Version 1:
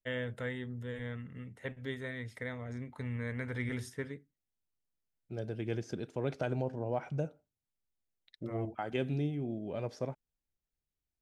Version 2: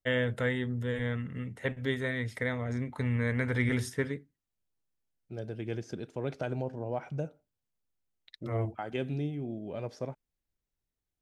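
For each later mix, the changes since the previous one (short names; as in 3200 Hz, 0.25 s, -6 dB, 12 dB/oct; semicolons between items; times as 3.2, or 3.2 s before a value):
first voice +8.0 dB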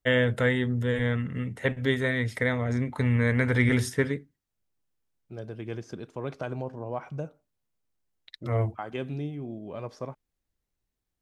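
first voice +6.0 dB; second voice: add bell 1100 Hz +10.5 dB 0.35 oct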